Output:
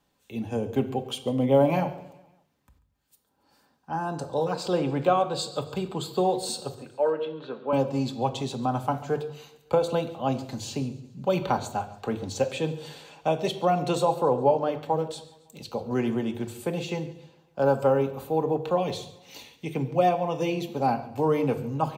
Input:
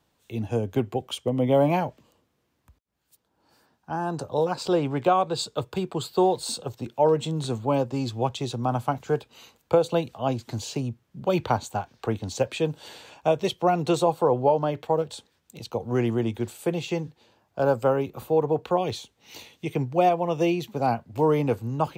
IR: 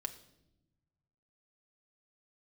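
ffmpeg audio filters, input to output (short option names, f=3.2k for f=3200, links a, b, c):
-filter_complex "[0:a]asettb=1/sr,asplit=3[a][b][c];[a]atrim=end=6.744[d];[b]atrim=start=6.74:end=7.73,asetpts=PTS-STARTPTS,afade=t=in:d=0.004:c=qsin,afade=t=out:st=0.986:d=0.004:c=qsin,highpass=440,equalizer=f=470:t=q:w=4:g=3,equalizer=f=800:t=q:w=4:g=-9,equalizer=f=1.5k:t=q:w=4:g=7,equalizer=f=2.1k:t=q:w=4:g=-5,lowpass=f=2.8k:w=0.5412,lowpass=f=2.8k:w=1.3066[e];[c]atrim=start=7.726[f];[d][e]acrossfade=d=0.004:c1=hsin:c2=qsin[g];[g][f]acrossfade=d=0.004:c1=qsin:c2=hsin,aecho=1:1:139|278|417|556:0.0944|0.0481|0.0246|0.0125[h];[1:a]atrim=start_sample=2205,afade=t=out:st=0.28:d=0.01,atrim=end_sample=12789[i];[h][i]afir=irnorm=-1:irlink=0"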